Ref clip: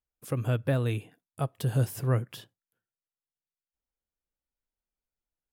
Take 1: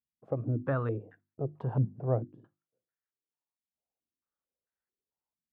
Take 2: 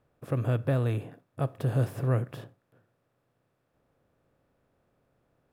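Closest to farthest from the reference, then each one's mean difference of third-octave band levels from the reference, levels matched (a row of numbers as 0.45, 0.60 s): 2, 1; 4.5, 8.5 dB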